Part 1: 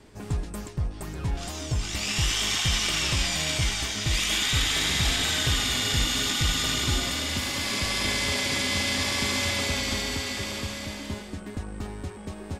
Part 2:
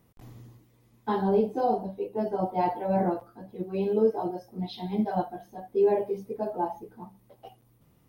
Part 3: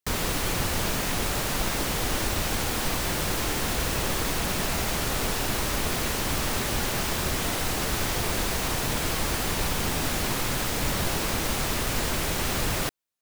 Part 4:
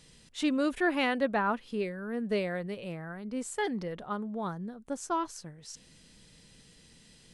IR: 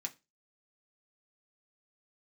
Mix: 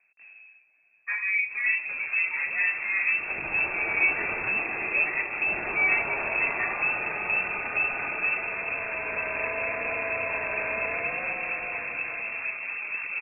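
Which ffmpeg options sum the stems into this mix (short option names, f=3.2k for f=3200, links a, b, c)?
-filter_complex "[0:a]adelay=1350,volume=-1dB[a];[1:a]volume=-3dB[b];[2:a]acrusher=samples=34:mix=1:aa=0.000001:lfo=1:lforange=34:lforate=3.4,adelay=1900,volume=-0.5dB[c];[3:a]acompressor=threshold=-33dB:ratio=6,adelay=1500,volume=2.5dB[d];[c][d]amix=inputs=2:normalize=0,asoftclip=type=tanh:threshold=-19.5dB,alimiter=level_in=6dB:limit=-24dB:level=0:latency=1:release=438,volume=-6dB,volume=0dB[e];[a][b][e]amix=inputs=3:normalize=0,lowpass=f=2.3k:t=q:w=0.5098,lowpass=f=2.3k:t=q:w=0.6013,lowpass=f=2.3k:t=q:w=0.9,lowpass=f=2.3k:t=q:w=2.563,afreqshift=-2700"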